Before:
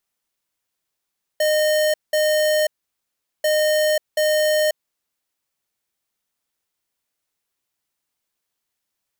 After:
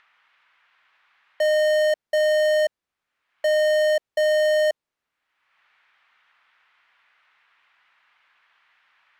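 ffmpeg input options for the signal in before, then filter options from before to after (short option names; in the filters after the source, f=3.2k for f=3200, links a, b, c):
-f lavfi -i "aevalsrc='0.126*(2*lt(mod(613*t,1),0.5)-1)*clip(min(mod(mod(t,2.04),0.73),0.54-mod(mod(t,2.04),0.73))/0.005,0,1)*lt(mod(t,2.04),1.46)':d=4.08:s=44100"
-filter_complex "[0:a]aemphasis=mode=reproduction:type=75kf,acrossover=split=1100|2800|5700[a][b][c][d];[b]acompressor=mode=upward:threshold=-38dB:ratio=2.5[e];[a][e][c][d]amix=inputs=4:normalize=0"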